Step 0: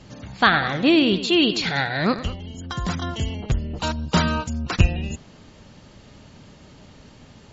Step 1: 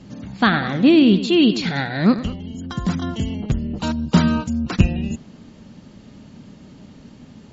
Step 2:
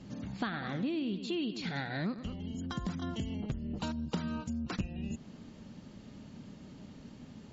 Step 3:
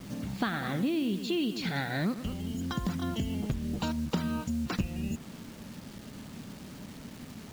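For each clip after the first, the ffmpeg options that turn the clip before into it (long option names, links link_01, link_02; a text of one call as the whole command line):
ffmpeg -i in.wav -af "equalizer=frequency=220:width_type=o:width=1.3:gain=11.5,volume=-2.5dB" out.wav
ffmpeg -i in.wav -af "acompressor=threshold=-26dB:ratio=6,volume=-7dB" out.wav
ffmpeg -i in.wav -af "acrusher=bits=8:mix=0:aa=0.000001,volume=4.5dB" out.wav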